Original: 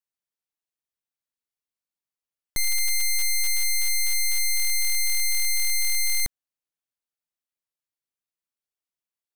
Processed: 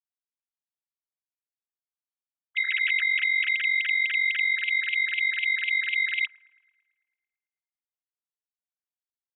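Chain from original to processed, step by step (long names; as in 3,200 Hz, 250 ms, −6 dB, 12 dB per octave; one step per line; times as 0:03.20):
three sine waves on the formant tracks
comb filter 3.1 ms, depth 37%
delay with a band-pass on its return 111 ms, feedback 61%, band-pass 450 Hz, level −10.5 dB
level −1.5 dB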